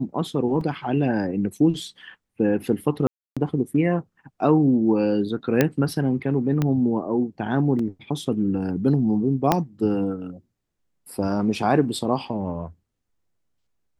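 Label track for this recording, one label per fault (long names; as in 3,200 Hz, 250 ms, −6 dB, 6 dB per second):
0.610000	0.610000	drop-out 3.1 ms
3.070000	3.370000	drop-out 296 ms
5.610000	5.610000	click −4 dBFS
6.620000	6.620000	click −11 dBFS
7.790000	7.790000	drop-out 3.5 ms
9.520000	9.520000	click −4 dBFS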